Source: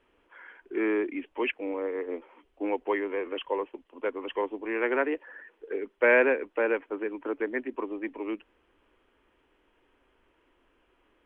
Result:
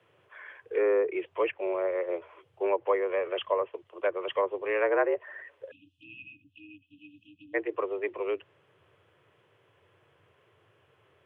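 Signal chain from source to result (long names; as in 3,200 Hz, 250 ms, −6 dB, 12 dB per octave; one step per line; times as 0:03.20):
treble cut that deepens with the level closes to 1,300 Hz, closed at −24 dBFS
time-frequency box erased 0:05.71–0:07.54, 220–2,400 Hz
frequency shifter +84 Hz
level +2.5 dB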